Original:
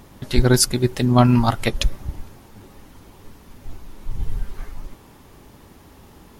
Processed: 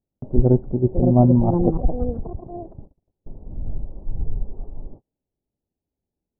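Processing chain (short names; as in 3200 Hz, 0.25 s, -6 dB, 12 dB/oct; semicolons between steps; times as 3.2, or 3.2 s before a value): echoes that change speed 0.71 s, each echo +6 st, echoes 3, each echo -6 dB; steep low-pass 750 Hz 36 dB/oct; gate -37 dBFS, range -38 dB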